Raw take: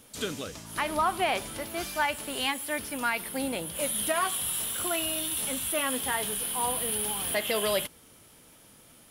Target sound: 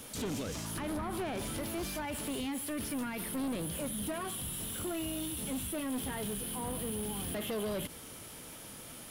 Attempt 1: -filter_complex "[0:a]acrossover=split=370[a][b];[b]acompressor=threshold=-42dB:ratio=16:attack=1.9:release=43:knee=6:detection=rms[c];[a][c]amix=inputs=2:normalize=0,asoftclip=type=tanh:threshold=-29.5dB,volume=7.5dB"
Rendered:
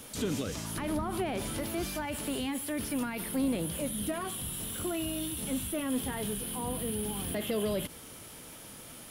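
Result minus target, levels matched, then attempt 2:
soft clip: distortion -12 dB
-filter_complex "[0:a]acrossover=split=370[a][b];[b]acompressor=threshold=-42dB:ratio=16:attack=1.9:release=43:knee=6:detection=rms[c];[a][c]amix=inputs=2:normalize=0,asoftclip=type=tanh:threshold=-39.5dB,volume=7.5dB"

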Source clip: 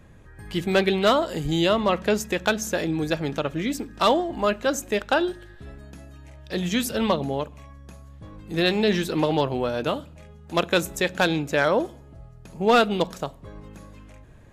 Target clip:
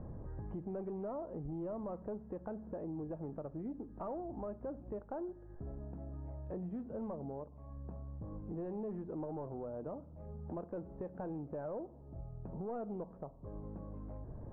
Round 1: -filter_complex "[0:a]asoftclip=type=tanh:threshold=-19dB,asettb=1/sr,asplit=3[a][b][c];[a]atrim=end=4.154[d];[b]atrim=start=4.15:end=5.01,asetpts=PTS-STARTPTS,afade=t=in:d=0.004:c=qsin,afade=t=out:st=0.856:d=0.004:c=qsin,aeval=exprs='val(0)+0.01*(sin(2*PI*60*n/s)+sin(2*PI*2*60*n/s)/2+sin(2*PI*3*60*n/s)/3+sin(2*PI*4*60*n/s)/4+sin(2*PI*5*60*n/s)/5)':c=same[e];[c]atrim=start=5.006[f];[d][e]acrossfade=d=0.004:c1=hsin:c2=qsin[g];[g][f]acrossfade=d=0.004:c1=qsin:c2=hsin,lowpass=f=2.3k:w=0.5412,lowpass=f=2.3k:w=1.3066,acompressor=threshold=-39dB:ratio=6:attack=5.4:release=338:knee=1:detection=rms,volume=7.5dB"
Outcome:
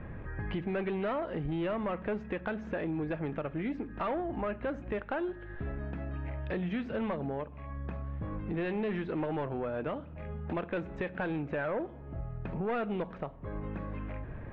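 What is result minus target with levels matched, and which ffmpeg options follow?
2000 Hz band +17.5 dB; compressor: peak gain reduction -8 dB
-filter_complex "[0:a]asoftclip=type=tanh:threshold=-19dB,asettb=1/sr,asplit=3[a][b][c];[a]atrim=end=4.154[d];[b]atrim=start=4.15:end=5.01,asetpts=PTS-STARTPTS,afade=t=in:d=0.004:c=qsin,afade=t=out:st=0.856:d=0.004:c=qsin,aeval=exprs='val(0)+0.01*(sin(2*PI*60*n/s)+sin(2*PI*2*60*n/s)/2+sin(2*PI*3*60*n/s)/3+sin(2*PI*4*60*n/s)/4+sin(2*PI*5*60*n/s)/5)':c=same[e];[c]atrim=start=5.006[f];[d][e]acrossfade=d=0.004:c1=hsin:c2=qsin[g];[g][f]acrossfade=d=0.004:c1=qsin:c2=hsin,lowpass=f=940:w=0.5412,lowpass=f=940:w=1.3066,acompressor=threshold=-48.5dB:ratio=6:attack=5.4:release=338:knee=1:detection=rms,volume=7.5dB"

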